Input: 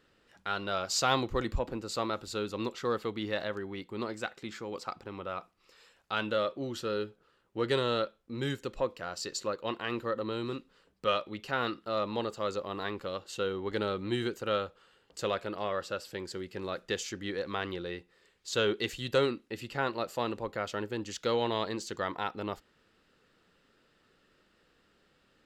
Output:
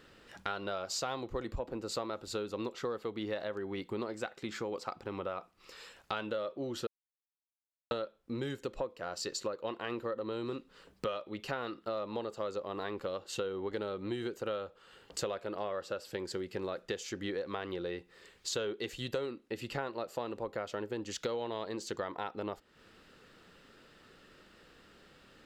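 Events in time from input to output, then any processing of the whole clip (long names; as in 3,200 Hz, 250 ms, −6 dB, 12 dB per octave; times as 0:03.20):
0:06.87–0:07.91: silence
whole clip: dynamic equaliser 530 Hz, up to +6 dB, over −44 dBFS, Q 0.7; downward compressor 6 to 1, threshold −44 dBFS; level +8.5 dB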